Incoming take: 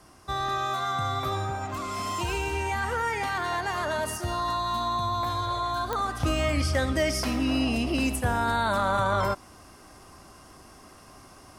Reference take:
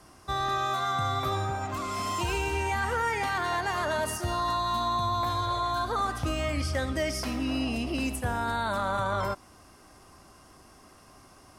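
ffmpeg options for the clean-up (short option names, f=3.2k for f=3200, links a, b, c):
-af "adeclick=t=4,asetnsamples=n=441:p=0,asendcmd='6.2 volume volume -4dB',volume=0dB"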